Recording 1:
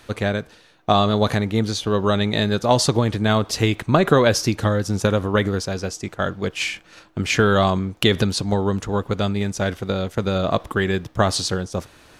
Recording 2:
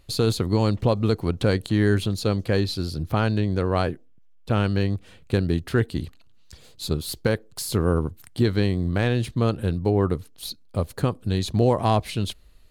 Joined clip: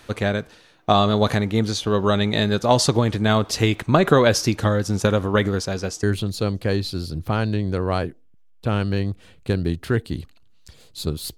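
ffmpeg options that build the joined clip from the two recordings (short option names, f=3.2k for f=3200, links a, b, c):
-filter_complex "[0:a]apad=whole_dur=11.37,atrim=end=11.37,atrim=end=6.032[a];[1:a]atrim=start=1.868:end=7.21[b];[a][b]acrossfade=d=0.004:c1=hsin:c2=hsin"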